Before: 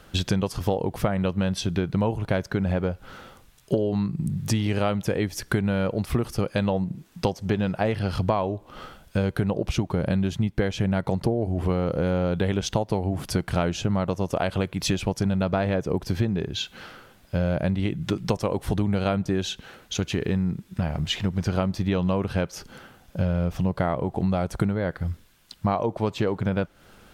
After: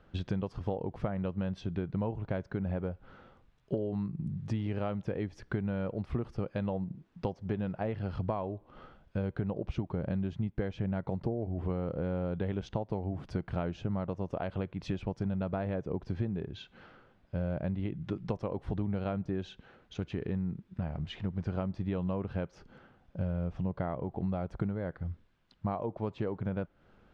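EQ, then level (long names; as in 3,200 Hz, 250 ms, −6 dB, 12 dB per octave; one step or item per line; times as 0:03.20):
head-to-tape spacing loss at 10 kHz 30 dB
−8.5 dB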